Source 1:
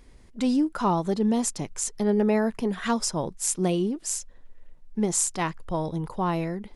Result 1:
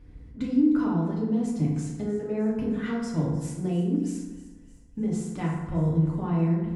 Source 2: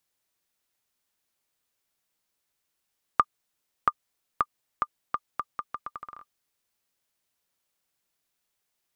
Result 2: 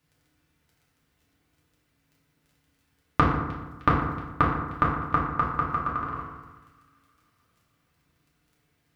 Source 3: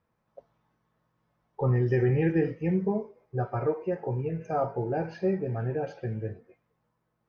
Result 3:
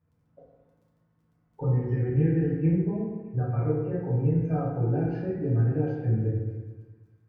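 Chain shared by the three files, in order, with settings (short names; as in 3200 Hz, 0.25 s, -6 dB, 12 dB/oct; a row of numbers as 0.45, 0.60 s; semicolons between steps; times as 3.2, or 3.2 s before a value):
compressor, threshold -27 dBFS; HPF 40 Hz; tone controls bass +13 dB, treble -12 dB; de-hum 55.29 Hz, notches 2; crackle 10/s -58 dBFS; bell 870 Hz -5.5 dB 0.5 oct; thin delay 0.307 s, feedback 54%, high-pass 2100 Hz, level -16 dB; FDN reverb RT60 1.2 s, low-frequency decay 1.2×, high-frequency decay 0.5×, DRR -5.5 dB; match loudness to -27 LUFS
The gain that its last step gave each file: -8.0, +7.0, -8.0 dB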